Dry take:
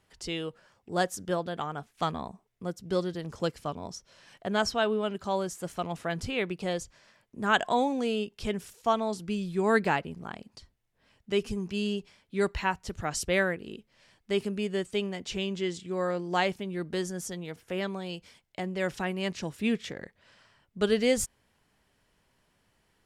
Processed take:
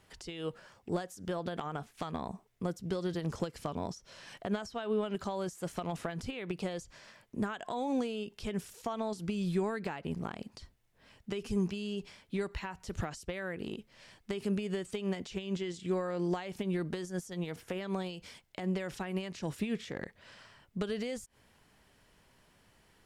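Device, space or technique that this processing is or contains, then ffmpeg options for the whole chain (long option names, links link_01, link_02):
de-esser from a sidechain: -filter_complex "[0:a]asplit=2[link_01][link_02];[link_02]highpass=frequency=6300:poles=1,apad=whole_len=1016757[link_03];[link_01][link_03]sidechaincompress=threshold=-54dB:ratio=8:attack=2.8:release=75,volume=5dB"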